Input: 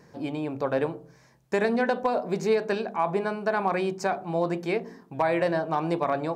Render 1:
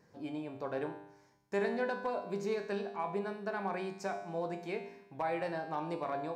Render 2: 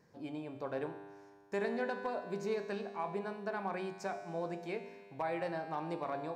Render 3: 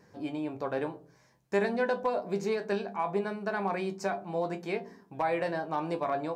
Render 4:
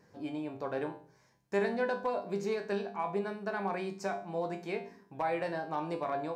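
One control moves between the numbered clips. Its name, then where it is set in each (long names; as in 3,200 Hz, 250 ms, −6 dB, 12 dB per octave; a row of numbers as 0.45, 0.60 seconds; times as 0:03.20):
tuned comb filter, decay: 0.85, 2, 0.15, 0.4 seconds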